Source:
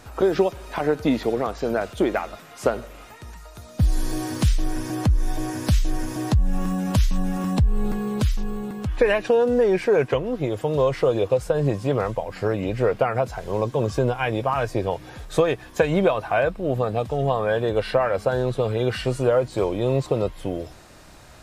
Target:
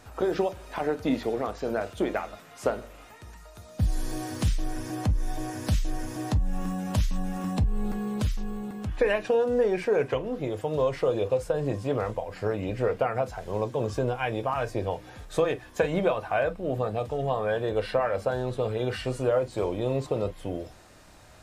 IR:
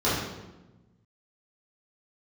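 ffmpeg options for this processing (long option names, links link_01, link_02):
-filter_complex "[0:a]asplit=2[link_01][link_02];[1:a]atrim=start_sample=2205,afade=type=out:start_time=0.14:duration=0.01,atrim=end_sample=6615,asetrate=74970,aresample=44100[link_03];[link_02][link_03]afir=irnorm=-1:irlink=0,volume=-22dB[link_04];[link_01][link_04]amix=inputs=2:normalize=0,volume=-6dB"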